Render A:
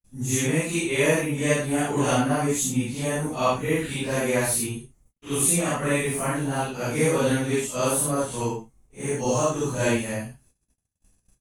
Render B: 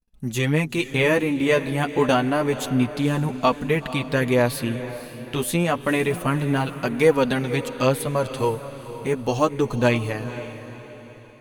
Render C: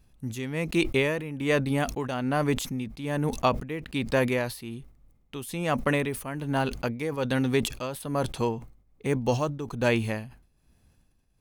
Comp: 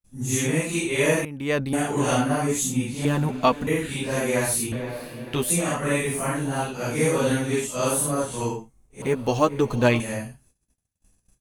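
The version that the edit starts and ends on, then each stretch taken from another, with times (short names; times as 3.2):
A
1.25–1.73 from C
3.05–3.67 from B
4.72–5.5 from B
9.02–10 from B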